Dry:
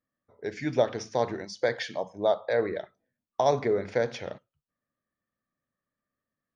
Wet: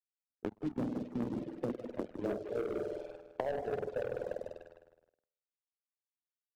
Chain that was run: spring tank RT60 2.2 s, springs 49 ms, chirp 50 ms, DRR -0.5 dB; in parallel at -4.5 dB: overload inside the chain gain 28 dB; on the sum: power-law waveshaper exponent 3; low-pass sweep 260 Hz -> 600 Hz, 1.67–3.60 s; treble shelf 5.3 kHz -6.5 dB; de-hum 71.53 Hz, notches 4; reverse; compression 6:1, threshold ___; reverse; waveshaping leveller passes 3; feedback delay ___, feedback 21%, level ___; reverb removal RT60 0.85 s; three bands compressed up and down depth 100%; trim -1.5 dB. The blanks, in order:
-37 dBFS, 159 ms, -9.5 dB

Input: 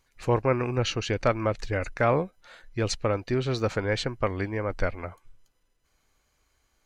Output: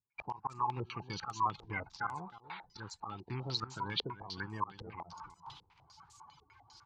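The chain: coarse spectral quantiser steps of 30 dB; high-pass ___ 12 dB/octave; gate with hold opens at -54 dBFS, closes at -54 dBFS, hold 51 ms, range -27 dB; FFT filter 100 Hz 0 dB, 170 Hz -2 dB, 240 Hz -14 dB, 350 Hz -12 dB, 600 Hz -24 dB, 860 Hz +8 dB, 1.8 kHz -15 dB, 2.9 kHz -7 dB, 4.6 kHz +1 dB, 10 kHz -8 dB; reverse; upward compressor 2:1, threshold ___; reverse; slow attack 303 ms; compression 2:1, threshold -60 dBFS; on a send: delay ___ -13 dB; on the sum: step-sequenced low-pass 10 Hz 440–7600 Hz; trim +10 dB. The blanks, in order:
150 Hz, -37 dBFS, 314 ms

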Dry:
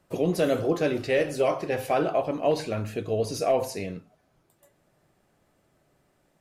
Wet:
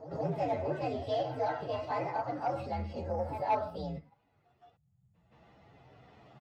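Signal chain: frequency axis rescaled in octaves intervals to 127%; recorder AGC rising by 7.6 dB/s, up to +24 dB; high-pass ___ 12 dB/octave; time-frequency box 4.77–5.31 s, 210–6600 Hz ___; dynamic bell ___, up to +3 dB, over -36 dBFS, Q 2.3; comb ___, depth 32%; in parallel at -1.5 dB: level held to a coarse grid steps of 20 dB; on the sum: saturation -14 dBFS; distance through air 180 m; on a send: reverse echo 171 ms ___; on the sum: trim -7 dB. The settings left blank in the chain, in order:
77 Hz, -29 dB, 840 Hz, 1.5 ms, -12.5 dB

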